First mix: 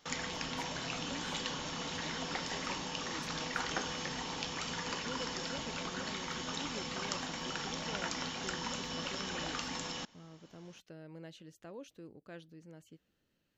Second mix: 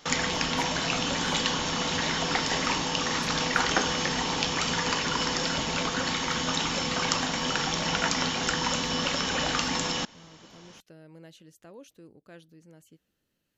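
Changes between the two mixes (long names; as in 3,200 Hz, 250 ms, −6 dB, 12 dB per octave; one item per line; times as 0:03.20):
speech: add parametric band 11,000 Hz +11 dB 0.98 octaves
background +11.5 dB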